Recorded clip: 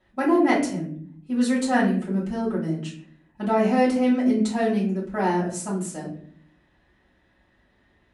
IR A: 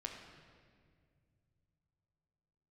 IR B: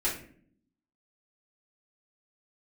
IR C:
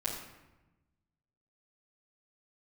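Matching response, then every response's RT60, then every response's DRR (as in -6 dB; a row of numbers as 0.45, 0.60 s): B; 2.1, 0.55, 1.0 s; 1.0, -8.0, -11.0 dB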